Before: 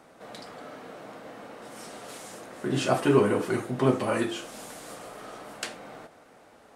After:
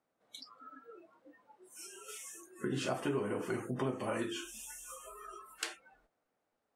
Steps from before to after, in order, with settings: spectral noise reduction 29 dB; compressor 4:1, threshold -34 dBFS, peak gain reduction 16 dB

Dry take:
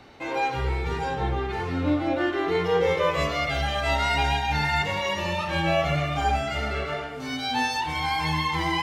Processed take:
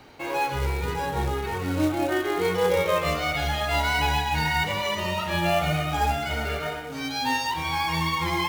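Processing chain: short-mantissa float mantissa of 2-bit; wide varispeed 1.04×

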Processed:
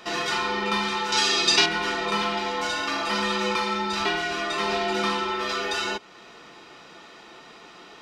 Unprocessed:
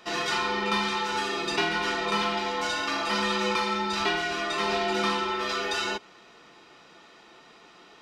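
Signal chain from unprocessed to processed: in parallel at 0 dB: compressor, threshold -42 dBFS, peak gain reduction 19 dB; 1.12–1.66 on the sum: bell 5400 Hz +14 dB 2 oct

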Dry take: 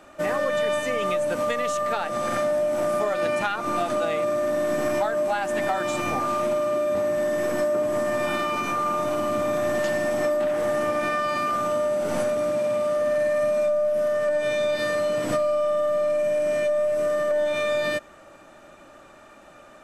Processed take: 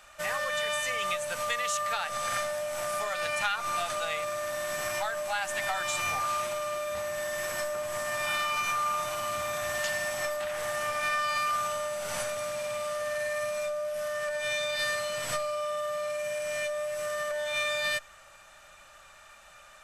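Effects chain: passive tone stack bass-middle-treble 10-0-10; gain +4.5 dB

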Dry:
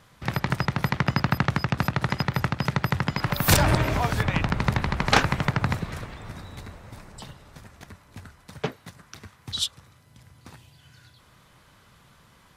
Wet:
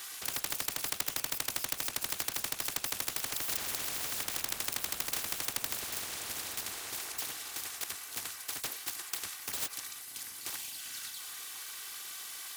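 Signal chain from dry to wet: minimum comb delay 2.6 ms; differentiator; spectral compressor 10:1

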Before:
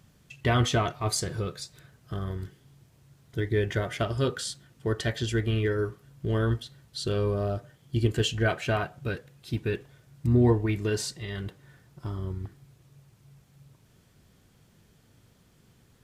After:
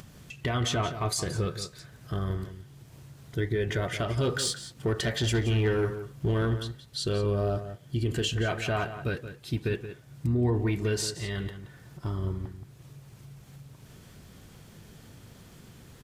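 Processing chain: upward compressor, threshold -43 dBFS; limiter -21.5 dBFS, peak gain reduction 10 dB; 4.17–6.54 sample leveller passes 1; outdoor echo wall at 30 m, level -11 dB; gain +2 dB

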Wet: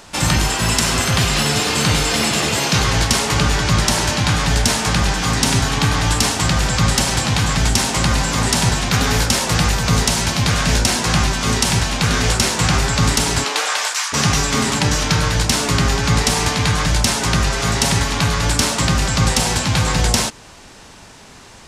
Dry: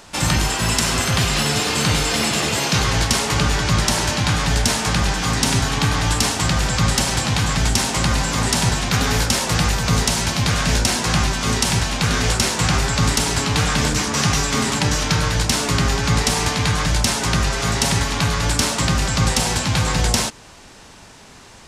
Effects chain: 13.43–14.12 HPF 310 Hz -> 1100 Hz 24 dB/oct; gain +2 dB

